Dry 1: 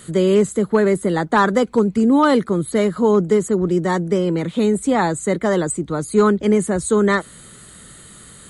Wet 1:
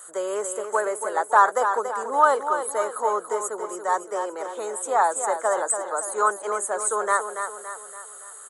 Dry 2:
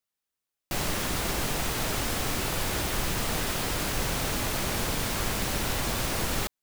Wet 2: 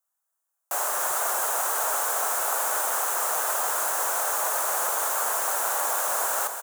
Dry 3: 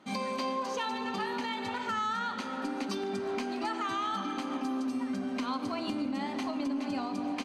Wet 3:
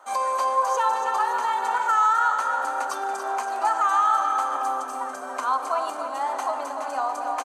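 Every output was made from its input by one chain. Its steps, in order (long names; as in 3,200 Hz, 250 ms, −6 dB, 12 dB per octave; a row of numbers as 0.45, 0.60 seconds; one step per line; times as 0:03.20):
high-pass filter 630 Hz 24 dB per octave
flat-topped bell 3,200 Hz −15.5 dB
on a send: repeating echo 283 ms, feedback 47%, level −8 dB
on the sum: loudness normalisation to −24 LKFS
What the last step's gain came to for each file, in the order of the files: +1.5, +7.5, +13.5 decibels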